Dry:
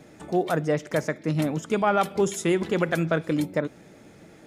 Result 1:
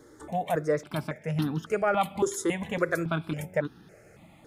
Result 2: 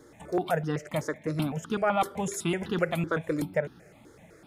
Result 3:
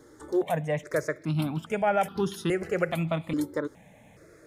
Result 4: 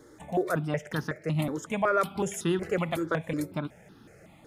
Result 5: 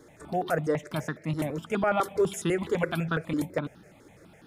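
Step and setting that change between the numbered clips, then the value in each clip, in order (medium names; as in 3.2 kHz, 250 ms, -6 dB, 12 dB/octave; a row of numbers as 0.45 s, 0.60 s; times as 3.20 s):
stepped phaser, rate: 3.6 Hz, 7.9 Hz, 2.4 Hz, 5.4 Hz, 12 Hz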